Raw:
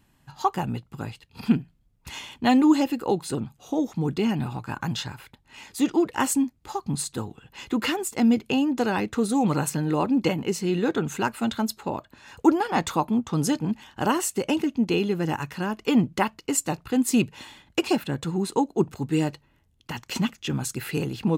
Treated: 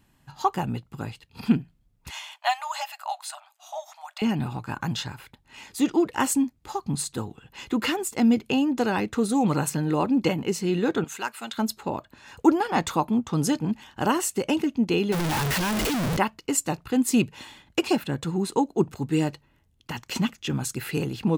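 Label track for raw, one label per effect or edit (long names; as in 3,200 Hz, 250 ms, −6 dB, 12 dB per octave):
2.110000	4.220000	linear-phase brick-wall high-pass 590 Hz
11.040000	11.580000	high-pass filter 1,300 Hz 6 dB per octave
15.120000	16.170000	sign of each sample alone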